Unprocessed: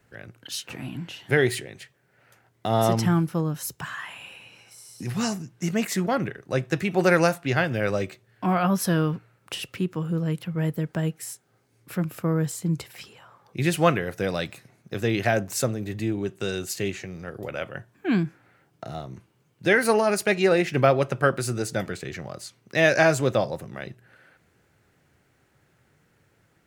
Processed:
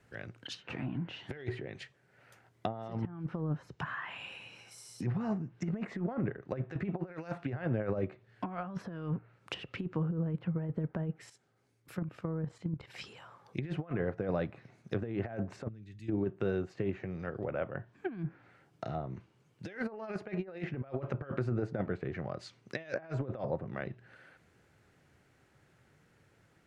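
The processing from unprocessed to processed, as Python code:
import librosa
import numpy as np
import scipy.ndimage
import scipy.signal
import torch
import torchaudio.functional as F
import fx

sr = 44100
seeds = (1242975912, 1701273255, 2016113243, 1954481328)

y = fx.level_steps(x, sr, step_db=12, at=(11.26, 12.87), fade=0.02)
y = fx.tone_stack(y, sr, knobs='6-0-2', at=(15.67, 16.08), fade=0.02)
y = fx.high_shelf(y, sr, hz=12000.0, db=-10.0)
y = fx.over_compress(y, sr, threshold_db=-27.0, ratio=-0.5)
y = fx.env_lowpass_down(y, sr, base_hz=1200.0, full_db=-25.5)
y = y * 10.0 ** (-6.5 / 20.0)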